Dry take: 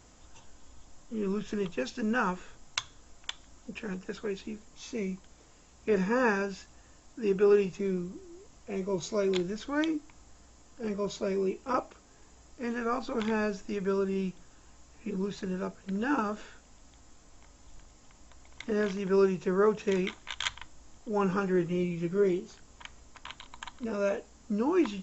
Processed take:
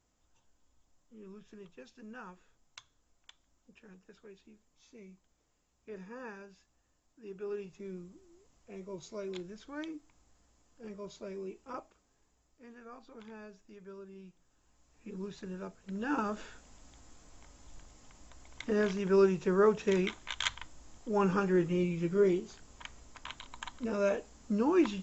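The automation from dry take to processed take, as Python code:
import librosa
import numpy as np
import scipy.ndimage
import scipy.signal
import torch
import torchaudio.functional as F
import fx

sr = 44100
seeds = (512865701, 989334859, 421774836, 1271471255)

y = fx.gain(x, sr, db=fx.line((7.22, -19.0), (7.96, -12.0), (11.6, -12.0), (12.68, -19.5), (14.24, -19.5), (15.24, -8.0), (15.81, -8.0), (16.42, -0.5)))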